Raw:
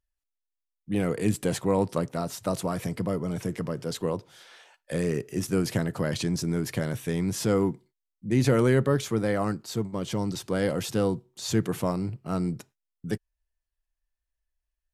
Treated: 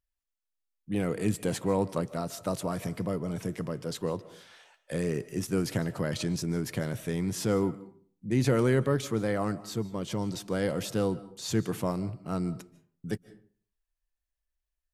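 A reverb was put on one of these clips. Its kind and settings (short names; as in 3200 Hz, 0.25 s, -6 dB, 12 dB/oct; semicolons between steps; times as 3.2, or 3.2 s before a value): digital reverb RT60 0.49 s, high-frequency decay 0.6×, pre-delay 0.11 s, DRR 17 dB; gain -3 dB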